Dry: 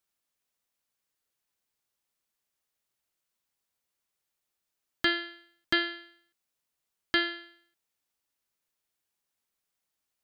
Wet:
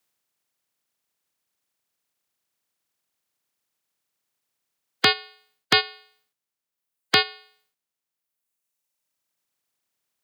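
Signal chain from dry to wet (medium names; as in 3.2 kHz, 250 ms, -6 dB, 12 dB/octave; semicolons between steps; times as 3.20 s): spectral peaks clipped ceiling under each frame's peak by 21 dB; frequency shift +85 Hz; reverb removal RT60 1.8 s; trim +8.5 dB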